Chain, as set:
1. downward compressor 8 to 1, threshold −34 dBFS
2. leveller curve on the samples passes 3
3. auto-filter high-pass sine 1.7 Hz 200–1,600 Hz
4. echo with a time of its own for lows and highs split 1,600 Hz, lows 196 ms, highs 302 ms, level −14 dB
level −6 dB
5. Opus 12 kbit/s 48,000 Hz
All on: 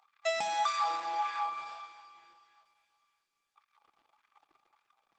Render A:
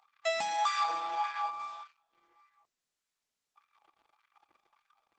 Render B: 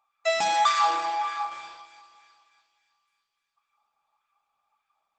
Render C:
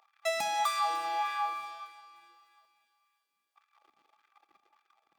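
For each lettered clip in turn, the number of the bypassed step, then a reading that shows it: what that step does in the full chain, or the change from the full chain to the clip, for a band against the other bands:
4, change in momentary loudness spread −3 LU
1, average gain reduction 3.0 dB
5, 8 kHz band +2.0 dB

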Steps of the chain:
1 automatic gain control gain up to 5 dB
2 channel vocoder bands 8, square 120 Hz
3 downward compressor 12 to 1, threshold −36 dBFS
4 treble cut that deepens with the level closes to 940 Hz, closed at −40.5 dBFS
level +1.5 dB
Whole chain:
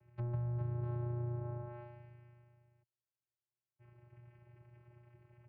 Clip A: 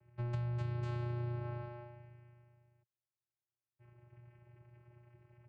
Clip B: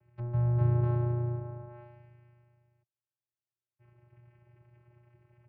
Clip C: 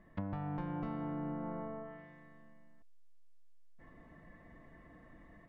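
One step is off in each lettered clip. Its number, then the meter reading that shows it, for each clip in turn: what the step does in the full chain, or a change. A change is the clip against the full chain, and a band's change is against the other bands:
4, 2 kHz band +8.5 dB
3, average gain reduction 4.0 dB
2, 125 Hz band −15.0 dB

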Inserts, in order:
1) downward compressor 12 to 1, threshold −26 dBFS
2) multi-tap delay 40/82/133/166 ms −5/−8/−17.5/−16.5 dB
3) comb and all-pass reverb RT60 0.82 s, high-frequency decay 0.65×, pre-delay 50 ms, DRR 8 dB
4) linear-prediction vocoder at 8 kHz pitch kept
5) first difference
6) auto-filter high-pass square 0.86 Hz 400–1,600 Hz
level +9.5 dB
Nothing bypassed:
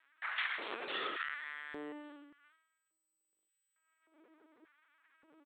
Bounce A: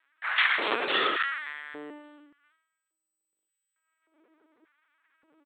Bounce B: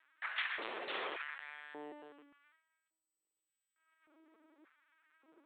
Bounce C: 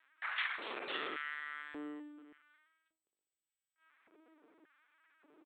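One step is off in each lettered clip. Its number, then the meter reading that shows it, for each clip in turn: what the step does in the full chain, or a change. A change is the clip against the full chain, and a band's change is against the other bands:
1, average gain reduction 3.5 dB
2, 250 Hz band −3.0 dB
3, 250 Hz band +3.0 dB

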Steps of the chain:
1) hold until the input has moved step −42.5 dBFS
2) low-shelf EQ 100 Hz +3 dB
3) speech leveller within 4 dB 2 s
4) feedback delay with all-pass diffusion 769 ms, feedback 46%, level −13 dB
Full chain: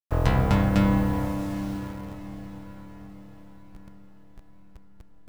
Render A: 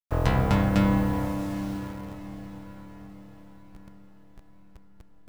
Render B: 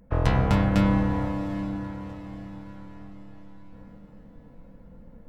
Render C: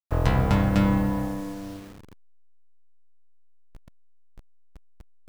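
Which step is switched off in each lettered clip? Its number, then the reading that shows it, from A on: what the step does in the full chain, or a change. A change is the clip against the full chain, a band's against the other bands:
2, change in integrated loudness −1.0 LU
1, distortion level −20 dB
4, echo-to-direct ratio −12.0 dB to none audible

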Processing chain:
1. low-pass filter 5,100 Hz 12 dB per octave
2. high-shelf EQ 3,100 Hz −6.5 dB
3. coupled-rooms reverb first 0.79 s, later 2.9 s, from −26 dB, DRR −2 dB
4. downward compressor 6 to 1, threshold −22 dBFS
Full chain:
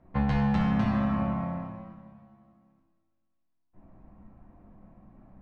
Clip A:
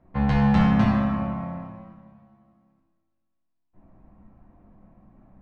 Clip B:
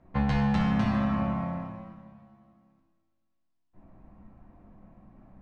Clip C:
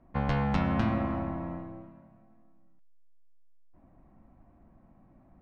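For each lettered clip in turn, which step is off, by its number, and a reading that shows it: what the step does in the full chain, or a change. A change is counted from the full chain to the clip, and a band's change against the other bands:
4, average gain reduction 2.0 dB
2, 2 kHz band +1.5 dB
3, change in crest factor +4.5 dB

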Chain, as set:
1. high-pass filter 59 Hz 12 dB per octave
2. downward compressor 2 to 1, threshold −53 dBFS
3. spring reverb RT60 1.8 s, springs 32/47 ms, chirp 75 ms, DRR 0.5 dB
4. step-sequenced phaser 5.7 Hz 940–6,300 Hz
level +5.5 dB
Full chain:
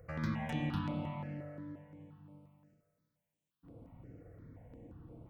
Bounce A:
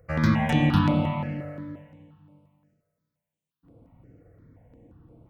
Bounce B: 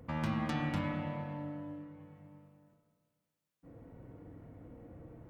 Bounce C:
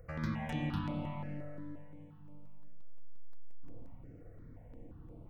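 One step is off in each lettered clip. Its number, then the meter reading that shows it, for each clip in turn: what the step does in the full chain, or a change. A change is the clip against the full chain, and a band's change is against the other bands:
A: 2, average gain reduction 7.5 dB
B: 4, 125 Hz band −2.0 dB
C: 1, change in crest factor −2.5 dB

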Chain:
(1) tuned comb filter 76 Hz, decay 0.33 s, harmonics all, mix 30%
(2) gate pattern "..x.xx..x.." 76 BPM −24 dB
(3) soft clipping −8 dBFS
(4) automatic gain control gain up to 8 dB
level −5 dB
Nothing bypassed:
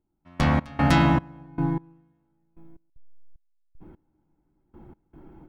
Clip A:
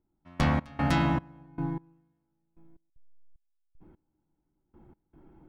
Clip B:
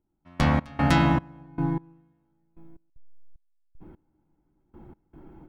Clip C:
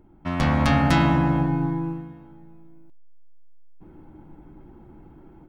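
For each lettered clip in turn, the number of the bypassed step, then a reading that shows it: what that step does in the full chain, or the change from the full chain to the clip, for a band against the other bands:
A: 4, change in momentary loudness spread +4 LU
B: 3, distortion level −22 dB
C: 2, change in crest factor −2.5 dB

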